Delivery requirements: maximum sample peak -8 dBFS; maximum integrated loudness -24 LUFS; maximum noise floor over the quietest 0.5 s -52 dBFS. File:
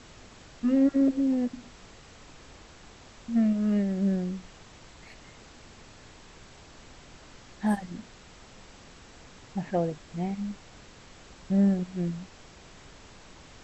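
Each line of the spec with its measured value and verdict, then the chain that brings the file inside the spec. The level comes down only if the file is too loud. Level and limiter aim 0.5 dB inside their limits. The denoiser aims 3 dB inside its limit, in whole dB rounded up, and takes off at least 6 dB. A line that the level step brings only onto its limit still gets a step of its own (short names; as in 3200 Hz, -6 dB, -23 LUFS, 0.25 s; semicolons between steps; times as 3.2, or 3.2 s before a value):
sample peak -14.0 dBFS: OK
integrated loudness -28.0 LUFS: OK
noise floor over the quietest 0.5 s -51 dBFS: fail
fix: denoiser 6 dB, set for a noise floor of -51 dBFS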